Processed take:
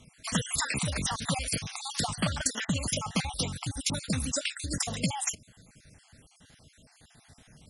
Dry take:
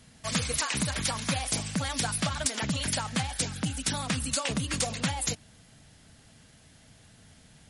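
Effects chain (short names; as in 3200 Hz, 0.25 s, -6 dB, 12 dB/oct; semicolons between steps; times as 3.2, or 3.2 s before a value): random spectral dropouts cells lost 48%; gain +1.5 dB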